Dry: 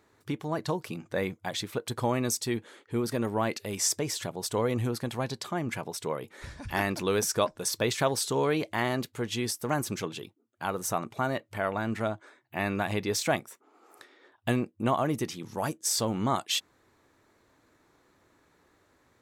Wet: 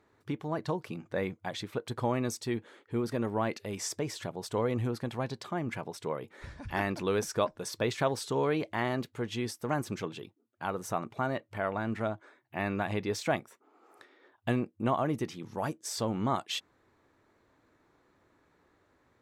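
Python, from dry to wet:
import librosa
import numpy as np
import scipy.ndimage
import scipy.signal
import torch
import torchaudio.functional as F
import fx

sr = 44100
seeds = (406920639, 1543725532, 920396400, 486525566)

y = fx.high_shelf(x, sr, hz=4800.0, db=-11.5)
y = y * librosa.db_to_amplitude(-2.0)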